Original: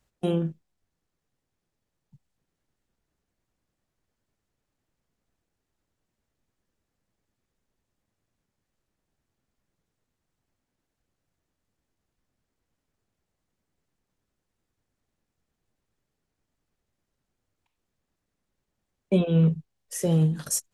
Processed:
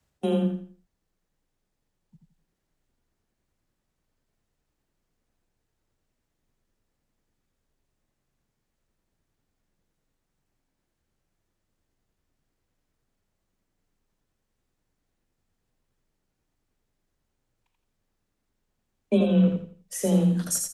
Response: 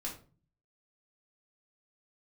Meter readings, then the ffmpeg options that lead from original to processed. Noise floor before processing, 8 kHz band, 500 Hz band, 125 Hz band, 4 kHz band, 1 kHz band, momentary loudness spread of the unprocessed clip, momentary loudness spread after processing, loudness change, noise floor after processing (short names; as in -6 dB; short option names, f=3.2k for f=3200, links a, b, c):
-83 dBFS, +1.5 dB, +2.0 dB, -2.5 dB, +1.0 dB, +2.5 dB, 12 LU, 12 LU, +0.5 dB, -79 dBFS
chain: -af "aecho=1:1:84|168|252|336:0.596|0.179|0.0536|0.0161,afreqshift=21"